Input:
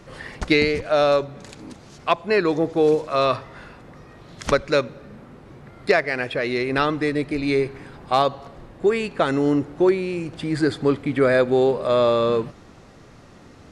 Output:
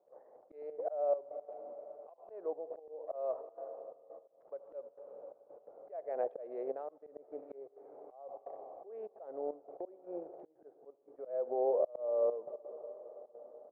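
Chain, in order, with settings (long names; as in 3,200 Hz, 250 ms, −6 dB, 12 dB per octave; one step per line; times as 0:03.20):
adaptive Wiener filter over 15 samples
downward compressor 16 to 1, threshold −29 dBFS, peak gain reduction 17.5 dB
flat-topped band-pass 610 Hz, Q 2.1
noise gate −46 dBFS, range −15 dB
on a send at −19 dB: convolution reverb RT60 5.4 s, pre-delay 72 ms
on the sum: gate pattern ".xxxxxxx.xxxx..x" 172 BPM −12 dB
volume swells 497 ms
level +11 dB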